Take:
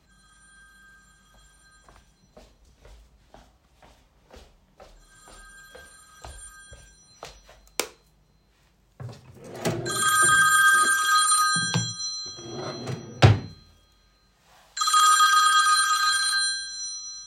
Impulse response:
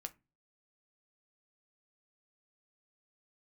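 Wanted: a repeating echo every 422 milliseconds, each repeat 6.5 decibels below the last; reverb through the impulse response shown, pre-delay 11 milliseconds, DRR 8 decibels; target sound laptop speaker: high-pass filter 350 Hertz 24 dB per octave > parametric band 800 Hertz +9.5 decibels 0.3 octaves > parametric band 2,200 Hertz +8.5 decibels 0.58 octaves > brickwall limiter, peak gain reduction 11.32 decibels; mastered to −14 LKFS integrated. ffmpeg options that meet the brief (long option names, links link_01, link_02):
-filter_complex "[0:a]aecho=1:1:422|844|1266|1688|2110|2532:0.473|0.222|0.105|0.0491|0.0231|0.0109,asplit=2[link_01][link_02];[1:a]atrim=start_sample=2205,adelay=11[link_03];[link_02][link_03]afir=irnorm=-1:irlink=0,volume=-4dB[link_04];[link_01][link_04]amix=inputs=2:normalize=0,highpass=frequency=350:width=0.5412,highpass=frequency=350:width=1.3066,equalizer=frequency=800:width_type=o:width=0.3:gain=9.5,equalizer=frequency=2200:width_type=o:width=0.58:gain=8.5,volume=8.5dB,alimiter=limit=-5dB:level=0:latency=1"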